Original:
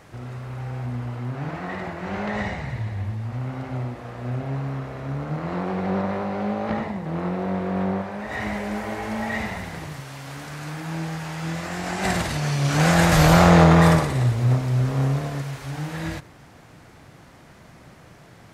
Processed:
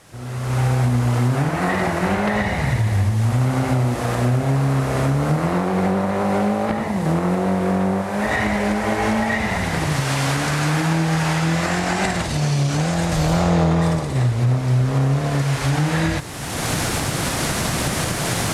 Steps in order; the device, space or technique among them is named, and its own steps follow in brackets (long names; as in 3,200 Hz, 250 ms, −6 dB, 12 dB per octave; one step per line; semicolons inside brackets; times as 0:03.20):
cheap recorder with automatic gain (white noise bed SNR 26 dB; camcorder AGC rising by 29 dB per second)
low-pass filter 11,000 Hz 24 dB per octave
0:12.25–0:14.16: parametric band 1,600 Hz −6 dB 1.7 octaves
level −3 dB